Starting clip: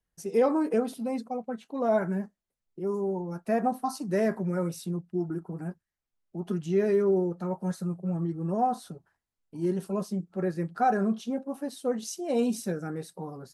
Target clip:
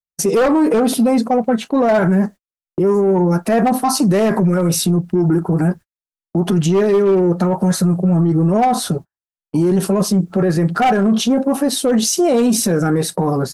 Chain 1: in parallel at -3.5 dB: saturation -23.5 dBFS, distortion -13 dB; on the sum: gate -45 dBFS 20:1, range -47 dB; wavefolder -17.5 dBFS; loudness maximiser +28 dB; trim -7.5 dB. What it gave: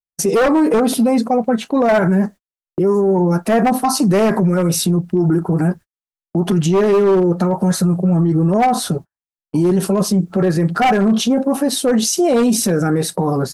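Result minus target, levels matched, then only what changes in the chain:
saturation: distortion -6 dB
change: saturation -31 dBFS, distortion -7 dB

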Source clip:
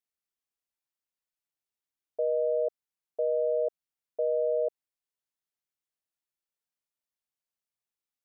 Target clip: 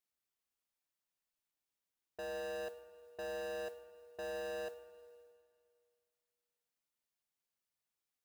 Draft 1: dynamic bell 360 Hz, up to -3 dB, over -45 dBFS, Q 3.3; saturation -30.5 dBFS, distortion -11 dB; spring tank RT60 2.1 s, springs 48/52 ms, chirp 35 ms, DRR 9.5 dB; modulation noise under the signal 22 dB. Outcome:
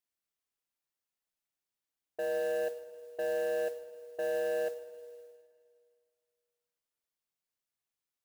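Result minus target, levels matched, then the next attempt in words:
saturation: distortion -6 dB
dynamic bell 360 Hz, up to -3 dB, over -45 dBFS, Q 3.3; saturation -41.5 dBFS, distortion -5 dB; spring tank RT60 2.1 s, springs 48/52 ms, chirp 35 ms, DRR 9.5 dB; modulation noise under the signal 22 dB

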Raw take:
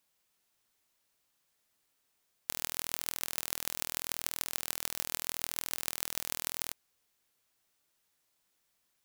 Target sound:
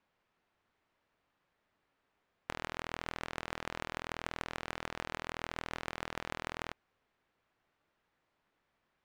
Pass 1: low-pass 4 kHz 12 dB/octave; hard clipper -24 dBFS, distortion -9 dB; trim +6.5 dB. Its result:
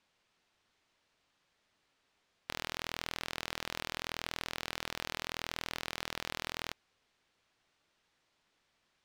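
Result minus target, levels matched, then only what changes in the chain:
4 kHz band +5.0 dB
change: low-pass 1.9 kHz 12 dB/octave

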